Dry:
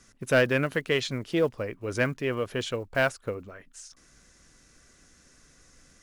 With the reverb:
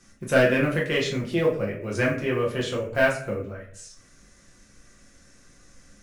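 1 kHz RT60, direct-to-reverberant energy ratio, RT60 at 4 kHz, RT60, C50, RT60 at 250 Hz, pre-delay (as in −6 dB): 0.45 s, −4.0 dB, 0.35 s, 0.55 s, 7.5 dB, 0.80 s, 6 ms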